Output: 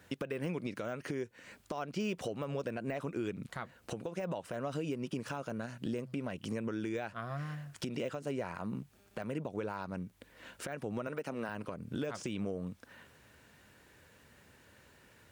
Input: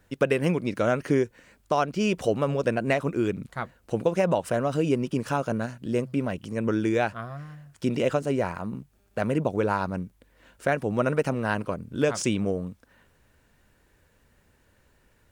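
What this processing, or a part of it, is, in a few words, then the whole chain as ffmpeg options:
broadcast voice chain: -filter_complex "[0:a]asettb=1/sr,asplit=3[a][b][c];[a]atrim=end=11.074[d];[b]atrim=start=11.07:end=11.49,asetpts=PTS-STARTPTS,afade=t=in:d=0.004:c=qsin,afade=t=out:st=0.416:d=0.004:c=qsin,highpass=190[e];[c]atrim=start=11.486[f];[d][e]acrossfade=d=0.004:c1=hsin:c2=qsin[g];[g][f]acrossfade=d=0.004:c1=qsin:c2=hsin,highpass=90,deesser=0.95,acompressor=threshold=-37dB:ratio=4,equalizer=f=3.1k:t=o:w=2.4:g=3.5,alimiter=level_in=4.5dB:limit=-24dB:level=0:latency=1:release=144,volume=-4.5dB,volume=2.5dB"

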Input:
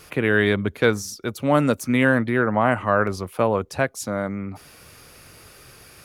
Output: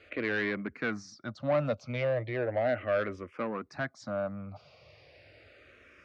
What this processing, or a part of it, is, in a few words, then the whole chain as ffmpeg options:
barber-pole phaser into a guitar amplifier: -filter_complex "[0:a]asplit=2[a][b];[b]afreqshift=-0.36[c];[a][c]amix=inputs=2:normalize=1,asoftclip=type=tanh:threshold=-18.5dB,highpass=79,equalizer=f=180:t=q:w=4:g=-6,equalizer=f=410:t=q:w=4:g=-5,equalizer=f=600:t=q:w=4:g=8,equalizer=f=920:t=q:w=4:g=-6,equalizer=f=2.1k:t=q:w=4:g=3,equalizer=f=3.4k:t=q:w=4:g=-4,lowpass=f=4.4k:w=0.5412,lowpass=f=4.4k:w=1.3066,volume=-5.5dB"

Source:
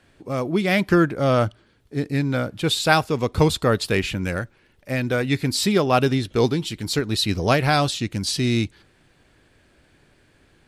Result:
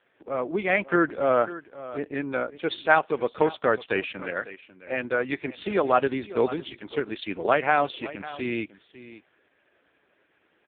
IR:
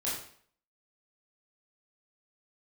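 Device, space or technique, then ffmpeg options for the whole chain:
satellite phone: -af "highpass=390,lowpass=3.3k,aecho=1:1:548:0.158" -ar 8000 -c:a libopencore_amrnb -b:a 4750

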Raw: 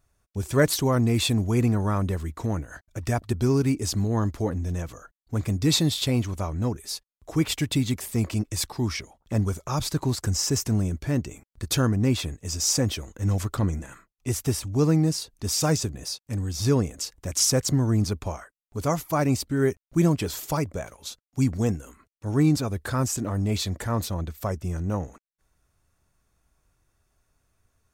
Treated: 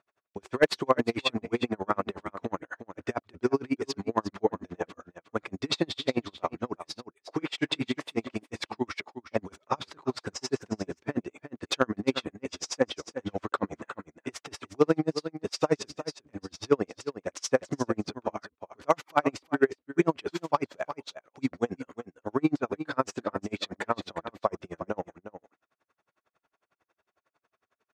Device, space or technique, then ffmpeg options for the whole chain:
helicopter radio: -filter_complex "[0:a]asettb=1/sr,asplit=3[a][b][c];[a]atrim=end=6.844[d];[b]atrim=start=6.84:end=8.12,asetpts=PTS-STARTPTS,afade=t=in:d=0.004:c=qsin,afade=t=out:st=1.276:d=0.004:c=qsin,asplit=2[e][f];[f]adelay=29,volume=-7dB[g];[e][g]amix=inputs=2:normalize=0,atrim=end_sample=56448[h];[c]atrim=start=8.116[i];[d][h]acrossfade=d=0.004:c1=hsin:c2=qsin[j];[j][i]acrossfade=d=0.004:c1=qsin:c2=hsin,highpass=390,lowpass=2.8k,aeval=exprs='val(0)*pow(10,-39*(0.5-0.5*cos(2*PI*11*n/s))/20)':c=same,asoftclip=type=hard:threshold=-18dB,aecho=1:1:359:0.266,volume=8.5dB"

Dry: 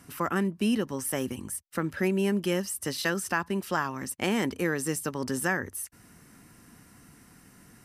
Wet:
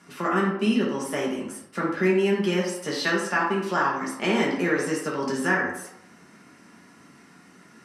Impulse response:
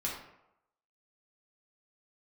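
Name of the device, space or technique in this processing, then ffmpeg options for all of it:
supermarket ceiling speaker: -filter_complex "[0:a]highpass=240,lowpass=6.3k[a];[1:a]atrim=start_sample=2205[b];[a][b]afir=irnorm=-1:irlink=0,volume=2.5dB"

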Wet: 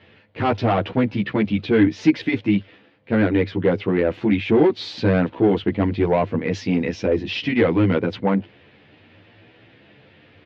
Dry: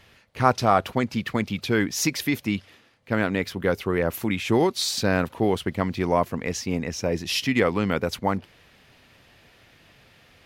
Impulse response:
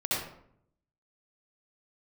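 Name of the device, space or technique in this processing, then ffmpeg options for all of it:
barber-pole flanger into a guitar amplifier: -filter_complex "[0:a]asettb=1/sr,asplit=3[a][b][c];[a]atrim=end=6.534[d];[b]atrim=start=6.53:end=7.06,asetpts=PTS-STARTPTS,afade=t=in:d=0.004:c=qsin,afade=t=out:st=0.526:d=0.004:c=qsin,highshelf=f=3.5k:g=12[e];[c]atrim=start=7.056[f];[d][e]acrossfade=d=0.004:c1=hsin:c2=qsin[g];[g][f]acrossfade=d=0.004:c1=qsin:c2=hsin,asplit=2[h][i];[i]adelay=11.5,afreqshift=0.7[j];[h][j]amix=inputs=2:normalize=1,asoftclip=type=tanh:threshold=-20dB,highpass=100,equalizer=f=100:t=q:w=4:g=10,equalizer=f=200:t=q:w=4:g=4,equalizer=f=310:t=q:w=4:g=9,equalizer=f=470:t=q:w=4:g=5,equalizer=f=1.2k:t=q:w=4:g=-4,lowpass=f=3.5k:w=0.5412,lowpass=f=3.5k:w=1.3066,volume=6dB"

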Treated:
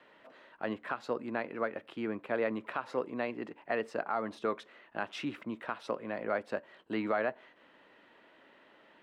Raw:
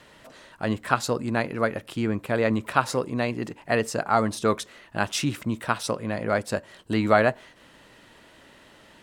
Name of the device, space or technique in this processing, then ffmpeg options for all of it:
DJ mixer with the lows and highs turned down: -filter_complex "[0:a]acrossover=split=220 3300:gain=0.1 1 0.0708[a][b][c];[a][b][c]amix=inputs=3:normalize=0,alimiter=limit=-14dB:level=0:latency=1:release=173,volume=-6.5dB"

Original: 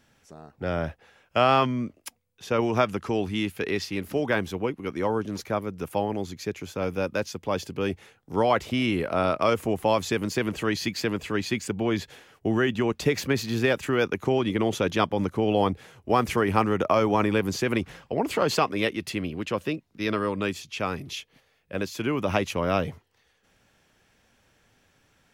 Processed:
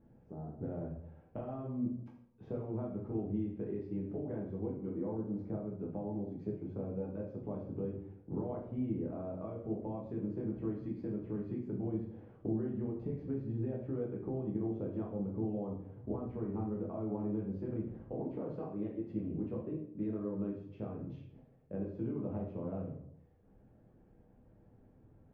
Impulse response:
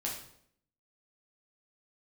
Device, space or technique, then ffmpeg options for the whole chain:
television next door: -filter_complex "[0:a]acompressor=threshold=-39dB:ratio=6,lowpass=440[a];[1:a]atrim=start_sample=2205[b];[a][b]afir=irnorm=-1:irlink=0,volume=3dB"

